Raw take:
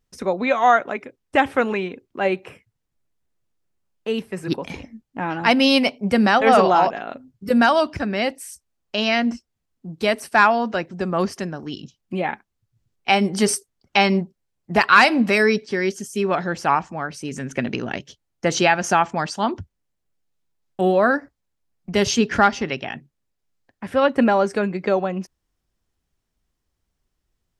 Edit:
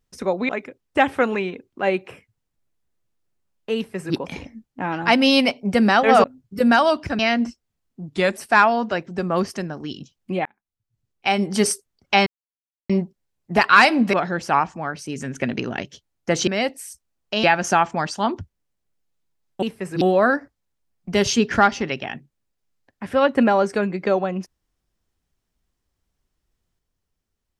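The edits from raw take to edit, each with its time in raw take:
0:00.49–0:00.87: remove
0:04.14–0:04.53: duplicate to 0:20.82
0:06.62–0:07.14: remove
0:08.09–0:09.05: move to 0:18.63
0:09.94–0:10.19: play speed 88%
0:12.28–0:13.46: fade in
0:14.09: splice in silence 0.63 s
0:15.33–0:16.29: remove

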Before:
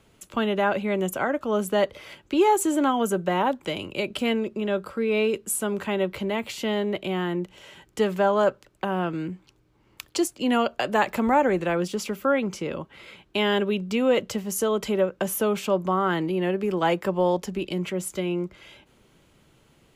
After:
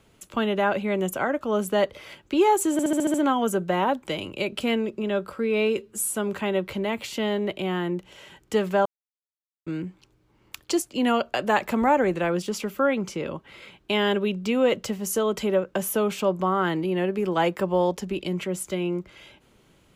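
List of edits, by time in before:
0:02.72: stutter 0.07 s, 7 plays
0:05.35–0:05.60: time-stretch 1.5×
0:08.31–0:09.12: silence

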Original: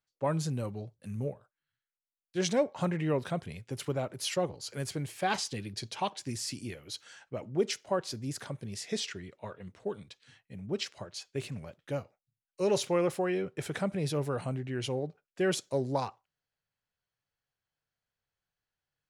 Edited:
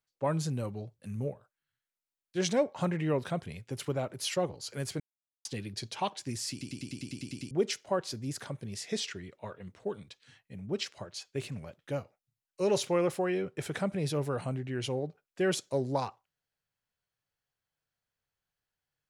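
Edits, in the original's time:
0:05.00–0:05.45: silence
0:06.51: stutter in place 0.10 s, 10 plays

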